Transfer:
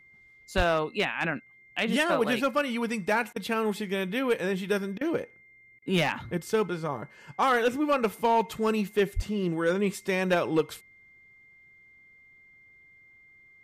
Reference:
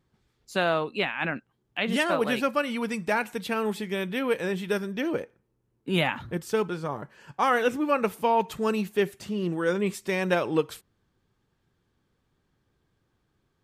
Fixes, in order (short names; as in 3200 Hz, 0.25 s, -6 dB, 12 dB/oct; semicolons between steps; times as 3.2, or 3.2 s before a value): clip repair -16.5 dBFS; notch 2100 Hz, Q 30; 0.56–0.68 HPF 140 Hz 24 dB/oct; 9.15–9.27 HPF 140 Hz 24 dB/oct; interpolate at 3.33/4.98/5.79, 30 ms